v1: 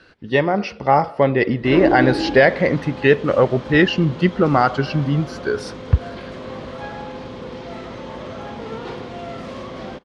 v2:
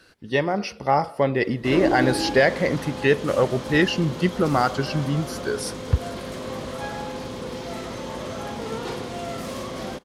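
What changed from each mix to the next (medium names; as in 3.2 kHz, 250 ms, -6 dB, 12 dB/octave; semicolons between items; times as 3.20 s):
speech -5.0 dB; master: remove low-pass 3.6 kHz 12 dB/octave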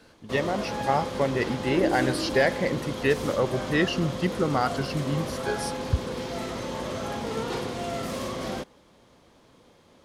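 speech -4.5 dB; background: entry -1.35 s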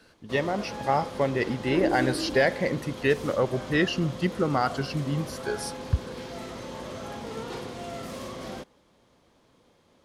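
background -5.5 dB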